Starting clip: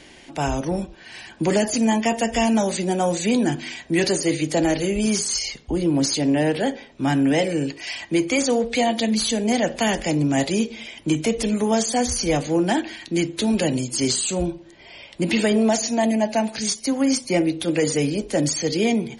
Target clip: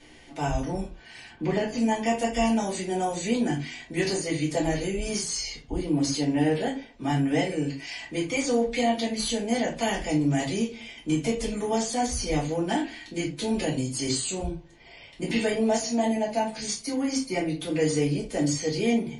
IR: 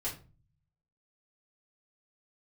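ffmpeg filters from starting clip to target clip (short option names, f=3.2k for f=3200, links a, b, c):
-filter_complex "[0:a]asettb=1/sr,asplit=3[a][b][c];[a]atrim=end=1.284[d];[b]atrim=start=1.28:end=1.78,asetpts=PTS-STARTPTS,afade=t=in:d=0.004:c=qsin,afade=t=out:st=0.496:d=0.004:c=qsin,lowpass=3.5k[e];[c]atrim=start=1.776[f];[d][e]acrossfade=d=0.004:c1=hsin:c2=qsin[g];[g][f]acrossfade=d=0.004:c1=qsin:c2=hsin[h];[1:a]atrim=start_sample=2205,atrim=end_sample=4410[i];[h][i]afir=irnorm=-1:irlink=0,volume=-7.5dB"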